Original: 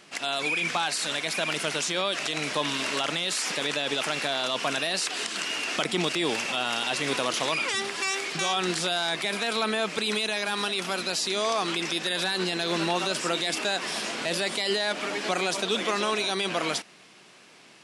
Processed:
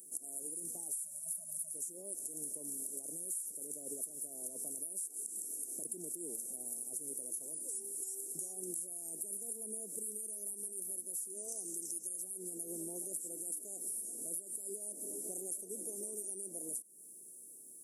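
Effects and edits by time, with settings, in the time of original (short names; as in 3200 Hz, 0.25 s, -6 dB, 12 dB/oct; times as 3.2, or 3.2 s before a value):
0.93–1.73 spectral delete 240–580 Hz
11.48–12.22 bell 6100 Hz +11.5 dB 0.87 oct
whole clip: inverse Chebyshev band-stop 1300–3900 Hz, stop band 70 dB; differentiator; compressor, threshold -57 dBFS; gain +18 dB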